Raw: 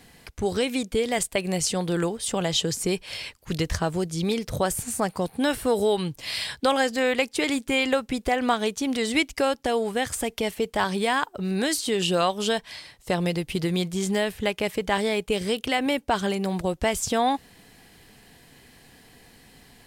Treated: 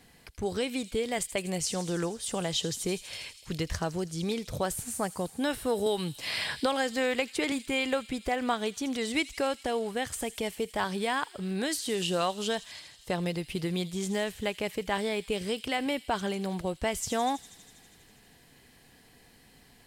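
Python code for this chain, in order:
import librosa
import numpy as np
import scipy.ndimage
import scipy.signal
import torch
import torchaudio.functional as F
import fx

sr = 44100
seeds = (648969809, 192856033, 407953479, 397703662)

y = fx.echo_wet_highpass(x, sr, ms=81, feedback_pct=79, hz=4200.0, wet_db=-11.0)
y = fx.band_squash(y, sr, depth_pct=70, at=(5.86, 7.52))
y = y * 10.0 ** (-6.0 / 20.0)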